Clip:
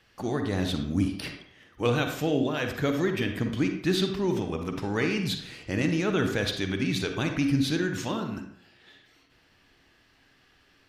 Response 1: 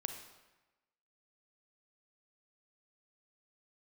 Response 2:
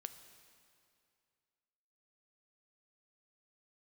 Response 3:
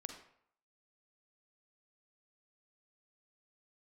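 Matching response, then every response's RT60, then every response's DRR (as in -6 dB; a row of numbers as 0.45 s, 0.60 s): 3; 1.1 s, 2.4 s, 0.65 s; 5.5 dB, 9.0 dB, 4.5 dB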